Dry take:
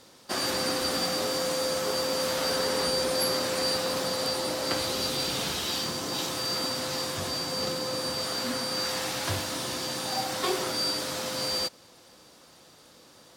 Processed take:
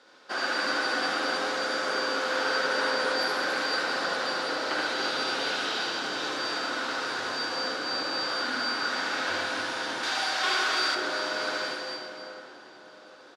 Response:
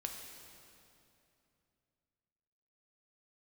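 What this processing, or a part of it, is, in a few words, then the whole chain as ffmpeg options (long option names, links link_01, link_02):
station announcement: -filter_complex "[0:a]highpass=360,lowpass=4100,equalizer=frequency=1500:width_type=o:width=0.28:gain=12,aecho=1:1:75.8|282.8:0.794|0.562[link_01];[1:a]atrim=start_sample=2205[link_02];[link_01][link_02]afir=irnorm=-1:irlink=0,asettb=1/sr,asplit=3[link_03][link_04][link_05];[link_03]atrim=end=10.034[link_06];[link_04]atrim=start=10.03:end=10.95,asetpts=PTS-STARTPTS,afade=type=in:duration=0.004:curve=qsin,afade=type=out:start_time=0.916:duration=0.004:curve=qsin,tiltshelf=frequency=970:gain=-6.5[link_07];[link_05]atrim=start=10.946[link_08];[link_06][link_07]acrossfade=duration=0.004:curve1=hsin:curve2=qsin[link_09];[link_09][link_08]acrossfade=duration=0.004:curve1=qsin:curve2=hsin,asplit=2[link_10][link_11];[link_11]adelay=751,lowpass=frequency=1100:poles=1,volume=-12.5dB,asplit=2[link_12][link_13];[link_13]adelay=751,lowpass=frequency=1100:poles=1,volume=0.5,asplit=2[link_14][link_15];[link_15]adelay=751,lowpass=frequency=1100:poles=1,volume=0.5,asplit=2[link_16][link_17];[link_17]adelay=751,lowpass=frequency=1100:poles=1,volume=0.5,asplit=2[link_18][link_19];[link_19]adelay=751,lowpass=frequency=1100:poles=1,volume=0.5[link_20];[link_10][link_12][link_14][link_16][link_18][link_20]amix=inputs=6:normalize=0"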